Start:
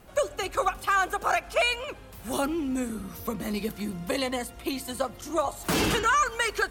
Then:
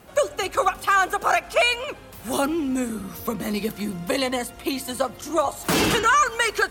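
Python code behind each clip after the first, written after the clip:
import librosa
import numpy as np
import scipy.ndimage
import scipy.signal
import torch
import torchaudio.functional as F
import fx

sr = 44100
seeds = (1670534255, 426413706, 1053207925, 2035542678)

y = fx.highpass(x, sr, hz=99.0, slope=6)
y = y * librosa.db_to_amplitude(5.0)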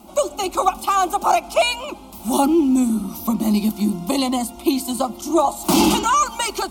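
y = fx.fixed_phaser(x, sr, hz=460.0, stages=6)
y = fx.small_body(y, sr, hz=(220.0, 340.0, 860.0), ring_ms=45, db=7)
y = y * librosa.db_to_amplitude(5.0)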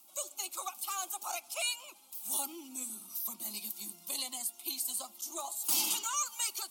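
y = fx.spec_quant(x, sr, step_db=15)
y = np.diff(y, prepend=0.0)
y = y * librosa.db_to_amplitude(-5.5)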